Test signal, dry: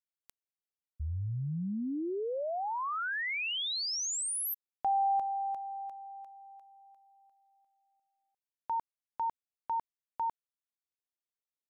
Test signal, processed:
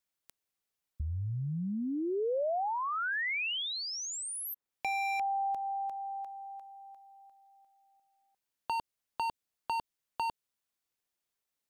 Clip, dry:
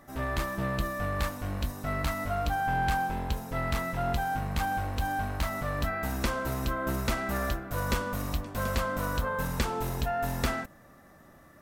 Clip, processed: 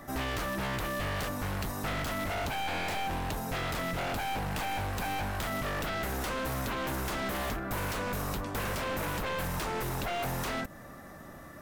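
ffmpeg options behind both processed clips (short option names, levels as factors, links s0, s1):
-filter_complex "[0:a]aeval=exprs='0.0316*(abs(mod(val(0)/0.0316+3,4)-2)-1)':c=same,acrossover=split=590|2100[s0][s1][s2];[s0]acompressor=threshold=0.00794:ratio=4[s3];[s1]acompressor=threshold=0.00562:ratio=4[s4];[s2]acompressor=threshold=0.00398:ratio=4[s5];[s3][s4][s5]amix=inputs=3:normalize=0,volume=2.37"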